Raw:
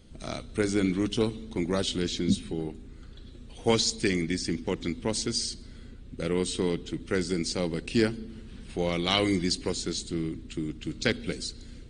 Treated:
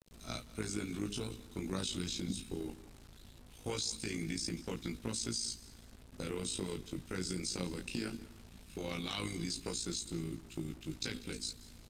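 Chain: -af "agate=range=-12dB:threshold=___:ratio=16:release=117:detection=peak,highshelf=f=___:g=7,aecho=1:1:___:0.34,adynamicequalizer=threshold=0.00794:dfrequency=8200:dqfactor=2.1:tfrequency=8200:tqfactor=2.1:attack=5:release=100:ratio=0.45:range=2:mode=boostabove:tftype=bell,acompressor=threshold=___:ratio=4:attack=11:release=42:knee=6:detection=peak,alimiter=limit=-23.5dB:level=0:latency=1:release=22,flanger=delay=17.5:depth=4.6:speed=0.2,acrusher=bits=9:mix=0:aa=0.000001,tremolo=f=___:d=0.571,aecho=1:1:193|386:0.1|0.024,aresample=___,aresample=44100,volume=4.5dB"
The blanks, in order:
-36dB, 3900, 0.8, -40dB, 56, 32000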